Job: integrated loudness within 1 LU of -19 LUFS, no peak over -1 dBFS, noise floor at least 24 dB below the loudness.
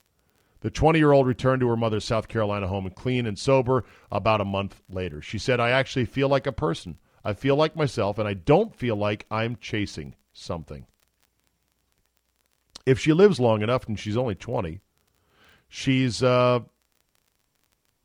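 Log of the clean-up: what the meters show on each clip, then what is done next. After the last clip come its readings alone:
ticks 23/s; loudness -24.0 LUFS; peak -4.0 dBFS; loudness target -19.0 LUFS
-> de-click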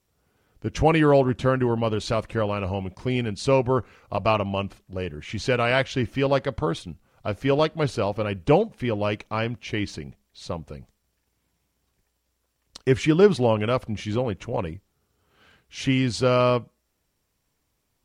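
ticks 0/s; loudness -24.0 LUFS; peak -4.0 dBFS; loudness target -19.0 LUFS
-> gain +5 dB; limiter -1 dBFS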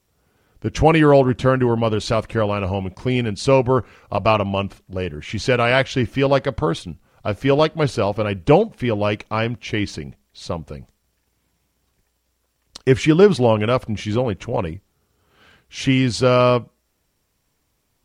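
loudness -19.0 LUFS; peak -1.0 dBFS; noise floor -69 dBFS

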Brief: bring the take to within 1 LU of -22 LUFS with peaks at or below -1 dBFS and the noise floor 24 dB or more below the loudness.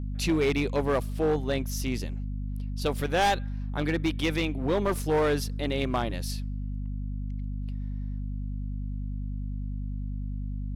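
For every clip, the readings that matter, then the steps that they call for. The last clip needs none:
clipped 1.8%; flat tops at -19.5 dBFS; hum 50 Hz; harmonics up to 250 Hz; hum level -30 dBFS; loudness -30.0 LUFS; peak -19.5 dBFS; loudness target -22.0 LUFS
-> clip repair -19.5 dBFS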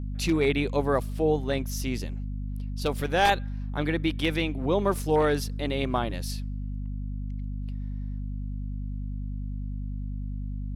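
clipped 0.0%; hum 50 Hz; harmonics up to 250 Hz; hum level -30 dBFS
-> notches 50/100/150/200/250 Hz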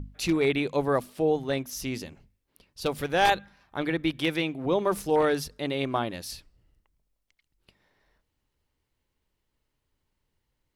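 hum none; loudness -27.5 LUFS; peak -10.0 dBFS; loudness target -22.0 LUFS
-> gain +5.5 dB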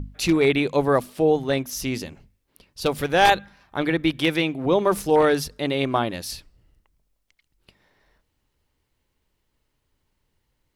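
loudness -22.0 LUFS; peak -4.5 dBFS; noise floor -74 dBFS

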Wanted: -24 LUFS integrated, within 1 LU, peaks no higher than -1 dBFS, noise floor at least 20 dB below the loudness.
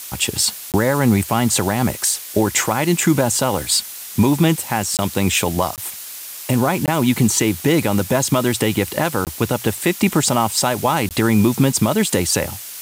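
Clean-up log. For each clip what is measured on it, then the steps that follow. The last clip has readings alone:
dropouts 6; longest dropout 18 ms; noise floor -33 dBFS; noise floor target -38 dBFS; loudness -18.0 LUFS; peak -4.5 dBFS; loudness target -24.0 LUFS
-> interpolate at 0.72/4.97/5.76/6.86/9.25/11.09, 18 ms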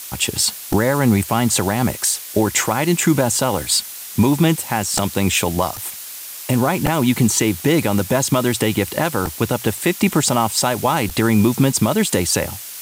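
dropouts 0; noise floor -33 dBFS; noise floor target -38 dBFS
-> denoiser 6 dB, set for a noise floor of -33 dBFS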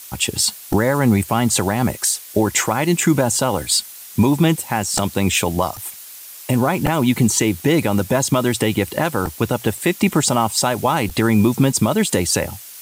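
noise floor -38 dBFS; loudness -18.0 LUFS; peak -4.5 dBFS; loudness target -24.0 LUFS
-> gain -6 dB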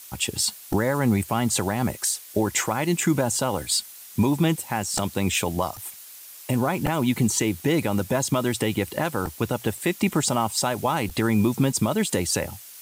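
loudness -24.0 LUFS; peak -10.5 dBFS; noise floor -44 dBFS

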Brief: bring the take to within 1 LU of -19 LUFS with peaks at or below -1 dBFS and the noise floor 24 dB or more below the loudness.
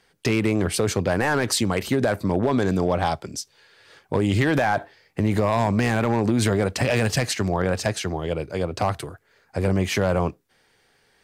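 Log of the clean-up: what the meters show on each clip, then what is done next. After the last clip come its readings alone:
clipped 0.5%; flat tops at -12.5 dBFS; loudness -23.0 LUFS; peak -12.5 dBFS; loudness target -19.0 LUFS
-> clip repair -12.5 dBFS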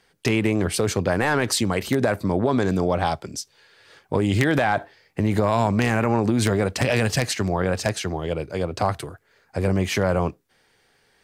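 clipped 0.0%; loudness -22.5 LUFS; peak -3.5 dBFS; loudness target -19.0 LUFS
-> gain +3.5 dB; limiter -1 dBFS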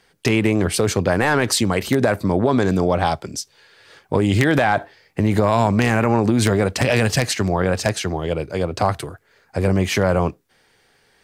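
loudness -19.0 LUFS; peak -1.0 dBFS; noise floor -59 dBFS

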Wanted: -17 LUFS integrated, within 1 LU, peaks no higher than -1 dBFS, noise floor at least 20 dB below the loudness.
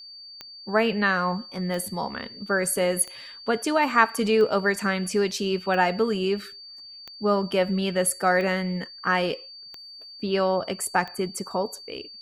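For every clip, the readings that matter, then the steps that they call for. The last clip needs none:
clicks 9; steady tone 4600 Hz; tone level -41 dBFS; loudness -24.5 LUFS; peak -4.0 dBFS; loudness target -17.0 LUFS
-> de-click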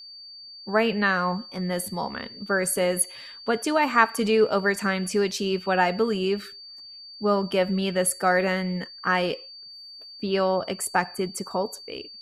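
clicks 0; steady tone 4600 Hz; tone level -41 dBFS
-> notch 4600 Hz, Q 30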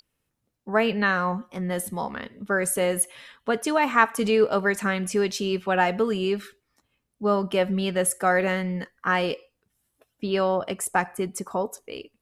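steady tone none; loudness -25.0 LUFS; peak -4.0 dBFS; loudness target -17.0 LUFS
-> gain +8 dB; limiter -1 dBFS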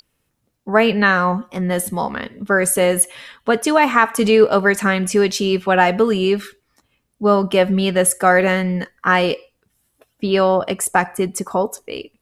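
loudness -17.0 LUFS; peak -1.0 dBFS; noise floor -70 dBFS

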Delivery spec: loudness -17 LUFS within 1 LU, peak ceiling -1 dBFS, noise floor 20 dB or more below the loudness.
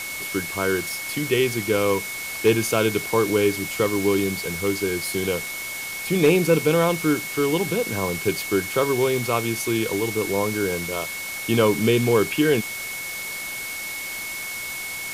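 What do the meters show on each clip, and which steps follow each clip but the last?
steady tone 2200 Hz; tone level -31 dBFS; noise floor -32 dBFS; noise floor target -43 dBFS; loudness -23.0 LUFS; peak -6.5 dBFS; loudness target -17.0 LUFS
-> notch 2200 Hz, Q 30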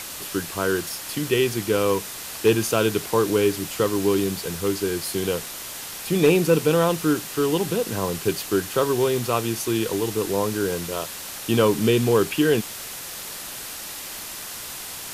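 steady tone none; noise floor -35 dBFS; noise floor target -44 dBFS
-> denoiser 9 dB, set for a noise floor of -35 dBFS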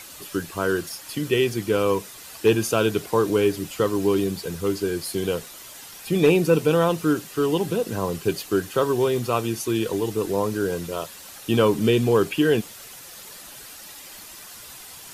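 noise floor -42 dBFS; noise floor target -43 dBFS
-> denoiser 6 dB, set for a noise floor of -42 dBFS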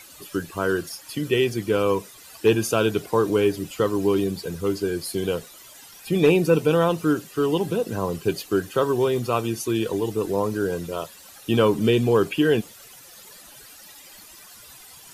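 noise floor -46 dBFS; loudness -23.0 LUFS; peak -7.5 dBFS; loudness target -17.0 LUFS
-> gain +6 dB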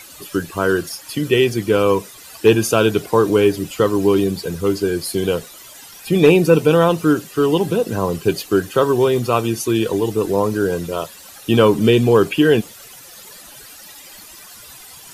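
loudness -17.0 LUFS; peak -1.5 dBFS; noise floor -40 dBFS

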